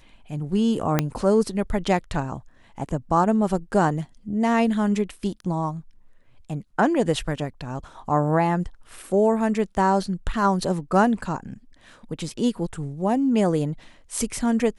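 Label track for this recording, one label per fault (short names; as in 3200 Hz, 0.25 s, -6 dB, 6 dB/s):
0.990000	0.990000	pop -5 dBFS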